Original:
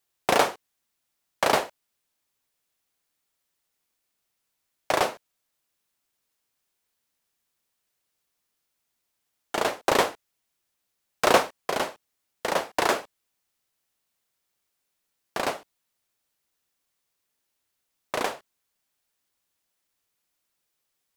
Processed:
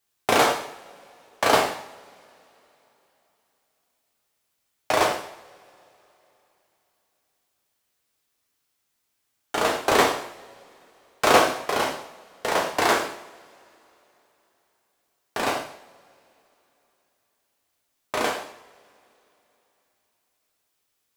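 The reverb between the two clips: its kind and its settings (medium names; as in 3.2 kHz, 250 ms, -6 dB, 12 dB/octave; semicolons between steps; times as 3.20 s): two-slope reverb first 0.63 s, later 3.5 s, from -26 dB, DRR -1 dB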